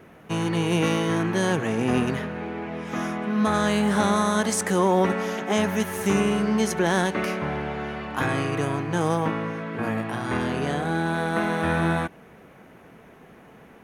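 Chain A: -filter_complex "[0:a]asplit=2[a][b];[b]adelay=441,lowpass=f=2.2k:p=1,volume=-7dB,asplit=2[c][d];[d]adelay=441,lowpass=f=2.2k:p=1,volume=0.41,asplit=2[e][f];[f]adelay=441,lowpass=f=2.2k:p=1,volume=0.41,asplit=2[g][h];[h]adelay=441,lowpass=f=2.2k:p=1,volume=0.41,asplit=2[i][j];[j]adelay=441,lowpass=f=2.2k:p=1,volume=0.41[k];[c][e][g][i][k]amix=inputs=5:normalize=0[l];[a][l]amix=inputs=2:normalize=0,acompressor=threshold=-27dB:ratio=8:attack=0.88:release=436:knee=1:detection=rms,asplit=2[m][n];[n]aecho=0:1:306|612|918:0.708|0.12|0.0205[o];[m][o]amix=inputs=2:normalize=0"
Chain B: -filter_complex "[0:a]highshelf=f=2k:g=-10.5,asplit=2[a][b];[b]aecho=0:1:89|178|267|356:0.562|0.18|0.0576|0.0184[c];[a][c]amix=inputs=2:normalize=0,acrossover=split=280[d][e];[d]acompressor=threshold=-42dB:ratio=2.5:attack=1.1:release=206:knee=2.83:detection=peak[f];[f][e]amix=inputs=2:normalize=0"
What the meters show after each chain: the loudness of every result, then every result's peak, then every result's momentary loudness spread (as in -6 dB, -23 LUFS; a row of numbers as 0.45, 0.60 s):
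-33.5, -27.0 LUFS; -19.5, -11.0 dBFS; 4, 8 LU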